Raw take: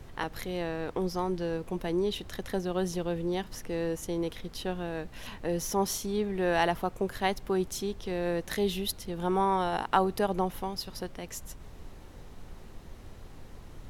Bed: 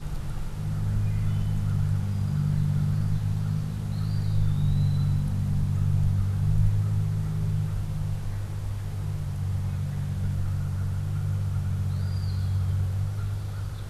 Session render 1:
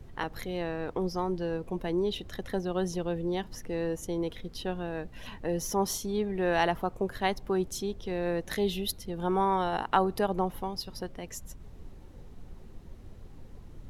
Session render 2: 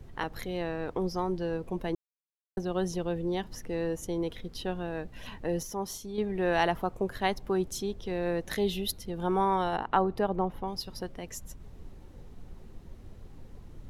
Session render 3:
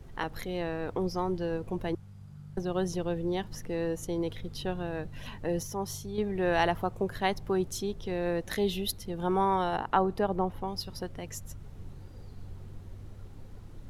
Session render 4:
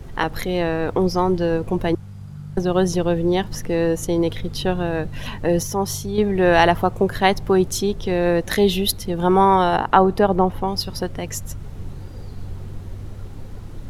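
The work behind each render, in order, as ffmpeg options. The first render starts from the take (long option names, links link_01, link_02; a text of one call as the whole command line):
ffmpeg -i in.wav -af "afftdn=noise_reduction=8:noise_floor=-48" out.wav
ffmpeg -i in.wav -filter_complex "[0:a]asettb=1/sr,asplit=3[link_01][link_02][link_03];[link_01]atrim=end=9.764[link_04];[link_02]atrim=start=9.76:end=10.68,asetpts=PTS-STARTPTS,afade=type=in:duration=0.004:curve=qsin,afade=type=out:start_time=0.916:duration=0.004:curve=qsin,lowpass=frequency=2000:poles=1[link_05];[link_03]atrim=start=10.676[link_06];[link_04][link_05]acrossfade=duration=0.004:curve1=hsin:curve2=qsin[link_07];[link_07][link_06]acrossfade=duration=0.004:curve1=qsin:curve2=hsin,asplit=5[link_08][link_09][link_10][link_11][link_12];[link_08]atrim=end=1.95,asetpts=PTS-STARTPTS,afade=type=out:start_time=1.946:duration=0.004:curve=hsin[link_13];[link_09]atrim=start=1.95:end=2.57,asetpts=PTS-STARTPTS,volume=0[link_14];[link_10]atrim=start=2.57:end=5.632,asetpts=PTS-STARTPTS,afade=type=in:duration=0.004:curve=hsin[link_15];[link_11]atrim=start=5.628:end=6.182,asetpts=PTS-STARTPTS,volume=-6.5dB[link_16];[link_12]atrim=start=6.178[link_17];[link_13][link_14][link_15]concat=n=3:v=0:a=1[link_18];[link_18][link_16]acrossfade=duration=0.004:curve1=hsin:curve2=hsin[link_19];[link_19][link_17]acrossfade=duration=0.004:curve1=hsin:curve2=hsin" out.wav
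ffmpeg -i in.wav -i bed.wav -filter_complex "[1:a]volume=-21.5dB[link_01];[0:a][link_01]amix=inputs=2:normalize=0" out.wav
ffmpeg -i in.wav -af "volume=12dB,alimiter=limit=-1dB:level=0:latency=1" out.wav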